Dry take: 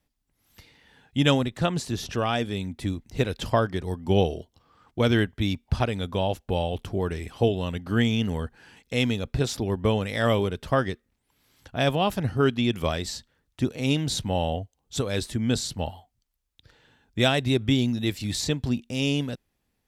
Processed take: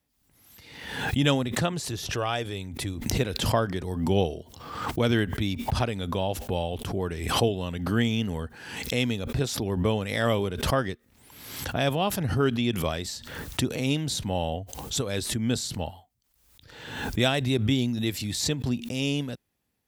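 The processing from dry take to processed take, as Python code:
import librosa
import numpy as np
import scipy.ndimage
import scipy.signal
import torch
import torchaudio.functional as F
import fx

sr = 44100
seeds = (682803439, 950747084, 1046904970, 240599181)

y = fx.peak_eq(x, sr, hz=220.0, db=-11.0, octaves=0.43, at=(1.72, 2.95))
y = scipy.signal.sosfilt(scipy.signal.butter(2, 60.0, 'highpass', fs=sr, output='sos'), y)
y = fx.high_shelf(y, sr, hz=11000.0, db=7.5)
y = fx.pre_swell(y, sr, db_per_s=54.0)
y = F.gain(torch.from_numpy(y), -2.5).numpy()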